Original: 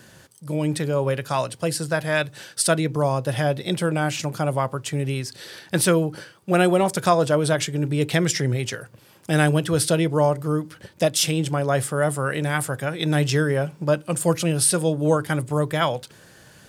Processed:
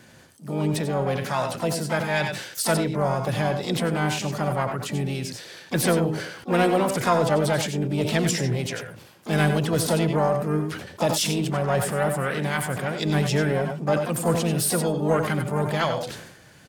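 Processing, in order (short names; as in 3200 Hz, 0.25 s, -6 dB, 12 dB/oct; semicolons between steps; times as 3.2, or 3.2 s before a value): high shelf 10000 Hz -8 dB; harmoniser +5 st -8 dB, +7 st -16 dB, +12 st -17 dB; in parallel at -5 dB: soft clip -14.5 dBFS, distortion -14 dB; on the sum: tapped delay 86/98 ms -12.5/-11.5 dB; sustainer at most 60 dB/s; gain -6.5 dB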